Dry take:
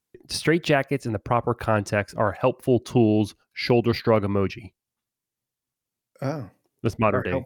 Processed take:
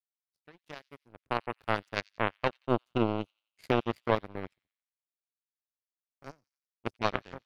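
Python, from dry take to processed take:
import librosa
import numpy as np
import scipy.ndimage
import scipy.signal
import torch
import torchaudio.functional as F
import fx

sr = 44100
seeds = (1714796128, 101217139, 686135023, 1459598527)

y = fx.fade_in_head(x, sr, length_s=1.43)
y = fx.power_curve(y, sr, exponent=3.0)
y = fx.echo_wet_highpass(y, sr, ms=88, feedback_pct=48, hz=4200.0, wet_db=-21.5)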